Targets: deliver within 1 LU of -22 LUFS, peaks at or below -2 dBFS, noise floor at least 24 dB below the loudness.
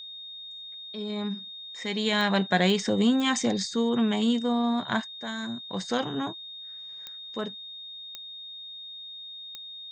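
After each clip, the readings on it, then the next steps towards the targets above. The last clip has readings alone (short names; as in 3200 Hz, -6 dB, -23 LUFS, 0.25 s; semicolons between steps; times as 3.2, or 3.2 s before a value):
clicks 6; steady tone 3700 Hz; tone level -39 dBFS; loudness -29.0 LUFS; peak -9.0 dBFS; loudness target -22.0 LUFS
-> de-click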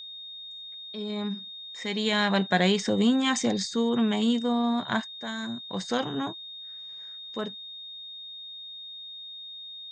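clicks 0; steady tone 3700 Hz; tone level -39 dBFS
-> notch 3700 Hz, Q 30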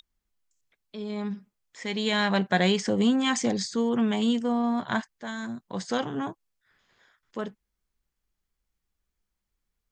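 steady tone none; loudness -27.5 LUFS; peak -9.0 dBFS; loudness target -22.0 LUFS
-> gain +5.5 dB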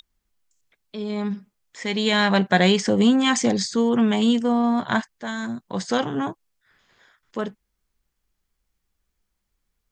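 loudness -22.0 LUFS; peak -3.5 dBFS; noise floor -78 dBFS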